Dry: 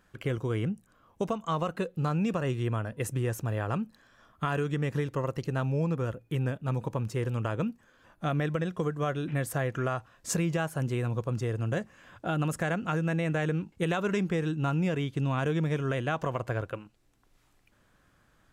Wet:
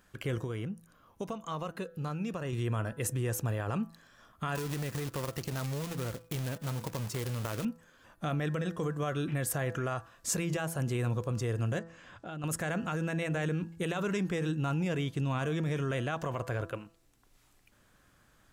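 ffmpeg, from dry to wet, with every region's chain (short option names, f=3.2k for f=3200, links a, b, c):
-filter_complex "[0:a]asettb=1/sr,asplit=3[a][b][c];[a]atrim=end=0.444[d];[b]atrim=start=0.44:end=2.53,asetpts=PTS-STARTPTS,afade=t=in:d=0.004:c=qsin,afade=t=out:st=2.086:d=0.004:c=qsin,acompressor=threshold=-45dB:ratio=1.5:attack=3.2:release=140:knee=1:detection=peak,bandreject=f=7.8k:w=7.9[e];[c]atrim=start=2.526[f];[d][e]acrossfade=d=0.004:c1=hsin:c2=qsin[g];[g][f]acrossfade=d=0.004:c1=qsin:c2=hsin,asettb=1/sr,asplit=3[h][i][j];[h]atrim=end=4.554[k];[i]atrim=start=4.55:end=7.65,asetpts=PTS-STARTPTS,afade=t=in:d=0.004:c=qsin,afade=t=out:st=3.096:d=0.004:c=qsin,acompressor=threshold=-31dB:ratio=10:attack=3.2:release=140:knee=1:detection=peak,acrusher=bits=2:mode=log:mix=0:aa=0.000001[l];[j]atrim=start=7.646[m];[k][l]acrossfade=d=0.004:c1=hsin:c2=qsin[n];[n][m]acrossfade=d=0.004:c1=qsin:c2=hsin,asettb=1/sr,asplit=3[o][p][q];[o]atrim=end=11.794[r];[p]atrim=start=11.79:end=12.44,asetpts=PTS-STARTPTS,afade=t=in:d=0.004:c=qsin,afade=t=out:st=0.646:d=0.004:c=qsin,lowpass=6.5k,acompressor=threshold=-47dB:ratio=2:attack=3.2:release=140:knee=1:detection=peak[s];[q]atrim=start=12.436[t];[r][s]acrossfade=d=0.004:c1=hsin:c2=qsin[u];[u][t]acrossfade=d=0.004:c1=qsin:c2=hsin,bandreject=f=166.1:t=h:w=4,bandreject=f=332.2:t=h:w=4,bandreject=f=498.3:t=h:w=4,bandreject=f=664.4:t=h:w=4,bandreject=f=830.5:t=h:w=4,bandreject=f=996.6:t=h:w=4,bandreject=f=1.1627k:t=h:w=4,bandreject=f=1.3288k:t=h:w=4,bandreject=f=1.4949k:t=h:w=4,bandreject=f=1.661k:t=h:w=4,bandreject=f=1.8271k:t=h:w=4,alimiter=level_in=1dB:limit=-24dB:level=0:latency=1:release=22,volume=-1dB,highshelf=f=4.5k:g=6.5"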